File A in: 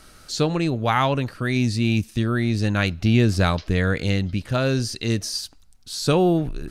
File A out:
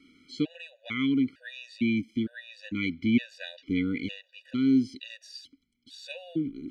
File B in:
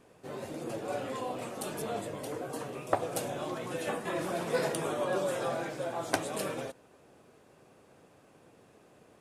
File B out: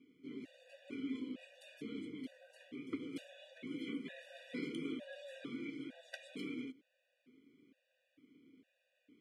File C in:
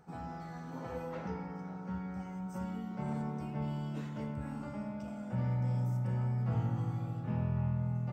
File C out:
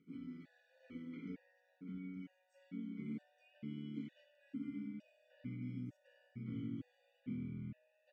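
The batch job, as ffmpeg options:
-filter_complex "[0:a]asplit=3[s0][s1][s2];[s0]bandpass=f=270:t=q:w=8,volume=1[s3];[s1]bandpass=f=2290:t=q:w=8,volume=0.501[s4];[s2]bandpass=f=3010:t=q:w=8,volume=0.355[s5];[s3][s4][s5]amix=inputs=3:normalize=0,afftfilt=real='re*gt(sin(2*PI*1.1*pts/sr)*(1-2*mod(floor(b*sr/1024/490),2)),0)':imag='im*gt(sin(2*PI*1.1*pts/sr)*(1-2*mod(floor(b*sr/1024/490),2)),0)':win_size=1024:overlap=0.75,volume=2.11"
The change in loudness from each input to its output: -7.0 LU, -11.5 LU, -11.0 LU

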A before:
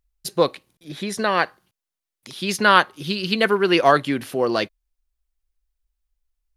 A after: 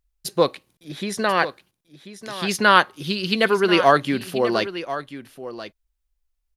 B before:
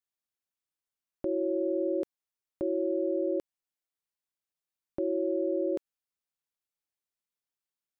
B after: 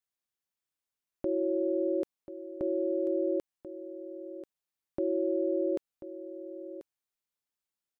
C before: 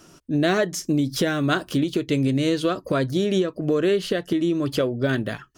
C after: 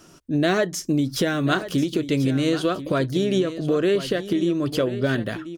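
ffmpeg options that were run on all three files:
-af "aecho=1:1:1038:0.224"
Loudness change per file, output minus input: 0.0 LU, -1.0 LU, 0.0 LU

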